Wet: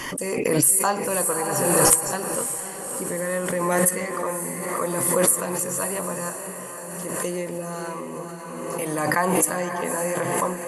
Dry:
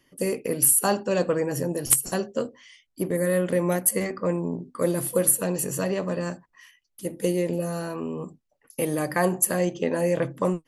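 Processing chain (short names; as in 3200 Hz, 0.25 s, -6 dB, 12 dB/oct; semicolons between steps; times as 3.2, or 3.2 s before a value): ten-band EQ 1000 Hz +12 dB, 2000 Hz +5 dB, 8000 Hz +11 dB; on a send: diffused feedback echo 0.564 s, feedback 53%, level -7 dB; on the sum: backwards sustainer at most 27 dB/s; gain -7 dB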